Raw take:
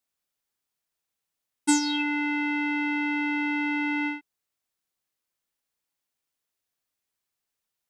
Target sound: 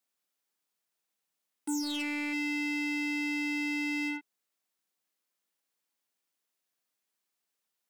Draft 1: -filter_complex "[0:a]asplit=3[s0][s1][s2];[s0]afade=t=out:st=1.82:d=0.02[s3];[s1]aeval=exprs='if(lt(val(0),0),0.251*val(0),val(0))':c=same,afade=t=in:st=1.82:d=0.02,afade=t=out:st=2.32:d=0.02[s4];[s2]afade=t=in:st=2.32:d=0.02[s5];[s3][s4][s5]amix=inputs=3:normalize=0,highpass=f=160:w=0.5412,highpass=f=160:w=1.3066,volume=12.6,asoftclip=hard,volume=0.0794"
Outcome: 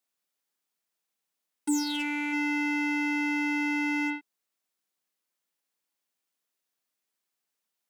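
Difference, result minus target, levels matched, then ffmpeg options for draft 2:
overload inside the chain: distortion -6 dB
-filter_complex "[0:a]asplit=3[s0][s1][s2];[s0]afade=t=out:st=1.82:d=0.02[s3];[s1]aeval=exprs='if(lt(val(0),0),0.251*val(0),val(0))':c=same,afade=t=in:st=1.82:d=0.02,afade=t=out:st=2.32:d=0.02[s4];[s2]afade=t=in:st=2.32:d=0.02[s5];[s3][s4][s5]amix=inputs=3:normalize=0,highpass=f=160:w=0.5412,highpass=f=160:w=1.3066,volume=31.6,asoftclip=hard,volume=0.0316"

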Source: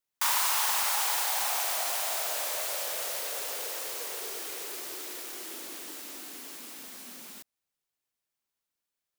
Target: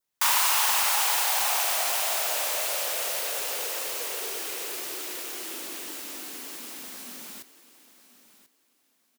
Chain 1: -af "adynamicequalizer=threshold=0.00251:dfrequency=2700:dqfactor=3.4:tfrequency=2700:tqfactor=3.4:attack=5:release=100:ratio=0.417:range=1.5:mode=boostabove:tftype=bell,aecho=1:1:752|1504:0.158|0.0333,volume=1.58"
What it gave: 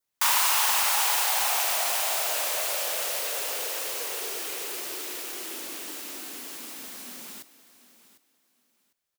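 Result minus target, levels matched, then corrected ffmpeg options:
echo 287 ms early
-af "adynamicequalizer=threshold=0.00251:dfrequency=2700:dqfactor=3.4:tfrequency=2700:tqfactor=3.4:attack=5:release=100:ratio=0.417:range=1.5:mode=boostabove:tftype=bell,aecho=1:1:1039|2078:0.158|0.0333,volume=1.58"

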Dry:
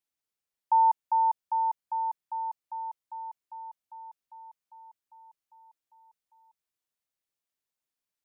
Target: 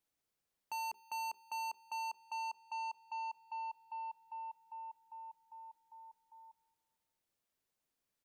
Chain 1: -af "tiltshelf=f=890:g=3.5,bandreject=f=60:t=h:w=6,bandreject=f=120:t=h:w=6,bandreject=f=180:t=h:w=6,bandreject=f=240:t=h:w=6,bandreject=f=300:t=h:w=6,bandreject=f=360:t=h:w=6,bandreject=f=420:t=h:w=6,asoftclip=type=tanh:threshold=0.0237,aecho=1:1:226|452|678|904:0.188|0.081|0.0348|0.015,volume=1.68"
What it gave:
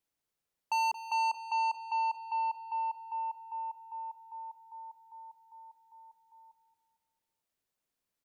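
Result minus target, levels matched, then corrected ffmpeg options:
echo-to-direct +10 dB; saturation: distortion -4 dB
-af "tiltshelf=f=890:g=3.5,bandreject=f=60:t=h:w=6,bandreject=f=120:t=h:w=6,bandreject=f=180:t=h:w=6,bandreject=f=240:t=h:w=6,bandreject=f=300:t=h:w=6,bandreject=f=360:t=h:w=6,bandreject=f=420:t=h:w=6,asoftclip=type=tanh:threshold=0.00668,aecho=1:1:226|452|678:0.0596|0.0256|0.011,volume=1.68"

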